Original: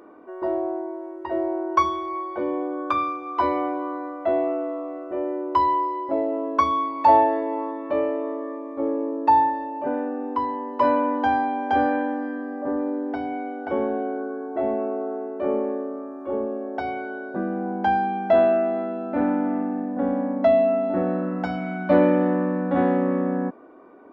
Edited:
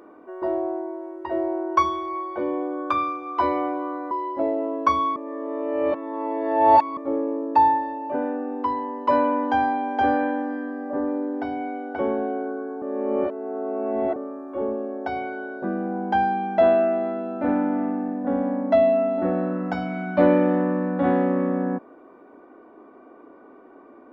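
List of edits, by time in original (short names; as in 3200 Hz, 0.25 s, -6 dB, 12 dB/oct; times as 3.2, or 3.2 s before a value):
4.11–5.83 cut
6.88–8.69 reverse
14.54–15.88 reverse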